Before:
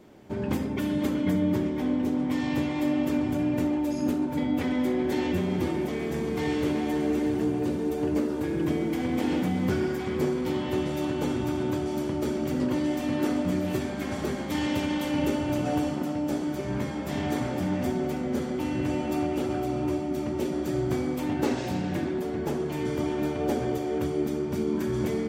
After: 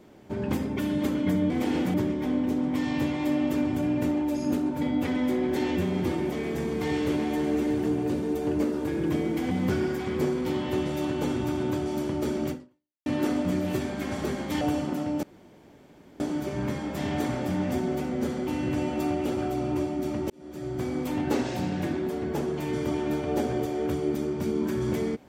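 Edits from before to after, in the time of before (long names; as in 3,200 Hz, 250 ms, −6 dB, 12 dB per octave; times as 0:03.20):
0:09.07–0:09.51: move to 0:01.50
0:12.50–0:13.06: fade out exponential
0:14.61–0:15.70: remove
0:16.32: splice in room tone 0.97 s
0:20.42–0:21.18: fade in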